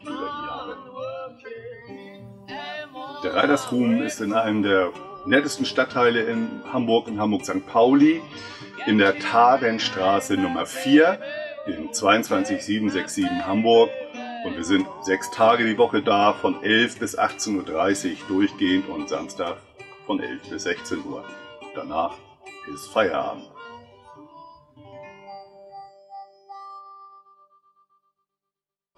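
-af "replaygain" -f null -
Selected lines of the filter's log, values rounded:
track_gain = +1.1 dB
track_peak = 0.531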